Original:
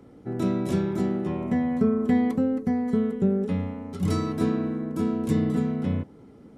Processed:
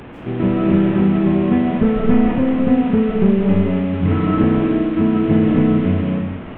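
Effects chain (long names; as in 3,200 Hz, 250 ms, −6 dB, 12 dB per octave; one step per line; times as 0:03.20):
linear delta modulator 16 kbit/s, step −37.5 dBFS
low-shelf EQ 150 Hz +3.5 dB
convolution reverb RT60 0.85 s, pre-delay 120 ms, DRR −1 dB
level +6.5 dB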